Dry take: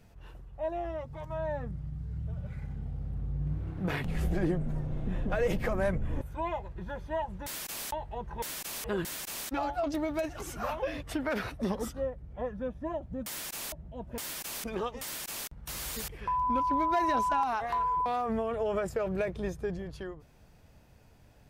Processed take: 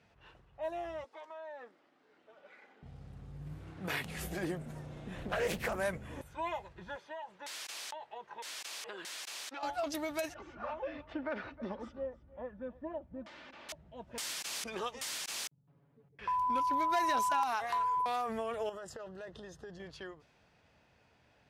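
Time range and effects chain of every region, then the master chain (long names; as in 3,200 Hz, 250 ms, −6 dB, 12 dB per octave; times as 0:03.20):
0:01.04–0:02.83: inverse Chebyshev high-pass filter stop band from 150 Hz + downward compressor 4 to 1, threshold −40 dBFS
0:05.17–0:05.76: low-shelf EQ 130 Hz +6.5 dB + highs frequency-modulated by the lows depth 0.51 ms
0:06.96–0:09.63: high-pass filter 370 Hz + downward compressor 5 to 1, threshold −37 dBFS
0:10.34–0:13.69: head-to-tape spacing loss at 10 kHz 44 dB + comb filter 3.4 ms, depth 40% + single-tap delay 312 ms −20 dB
0:15.47–0:16.19: four-pole ladder band-pass 170 Hz, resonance 30% + comb filter 7.1 ms, depth 93%
0:18.69–0:19.80: downward compressor 16 to 1, threshold −36 dBFS + Butterworth band-reject 2,300 Hz, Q 3.7
whole clip: high-pass filter 50 Hz; low-pass that shuts in the quiet parts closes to 2,800 Hz, open at −28 dBFS; spectral tilt +3 dB per octave; level −2.5 dB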